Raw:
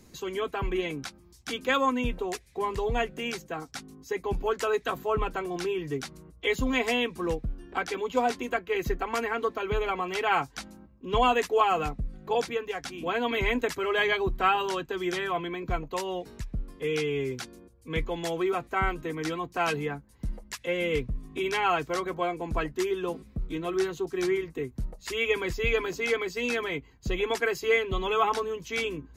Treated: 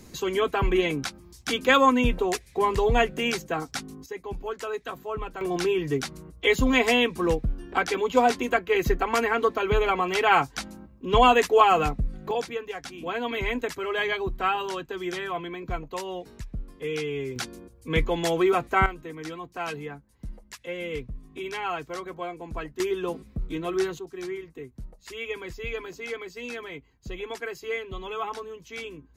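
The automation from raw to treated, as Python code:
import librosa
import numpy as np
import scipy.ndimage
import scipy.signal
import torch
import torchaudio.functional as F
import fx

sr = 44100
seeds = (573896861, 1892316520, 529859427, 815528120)

y = fx.gain(x, sr, db=fx.steps((0.0, 6.5), (4.06, -5.0), (5.41, 5.5), (12.31, -1.5), (17.36, 6.0), (18.86, -5.0), (22.8, 1.5), (23.99, -7.0)))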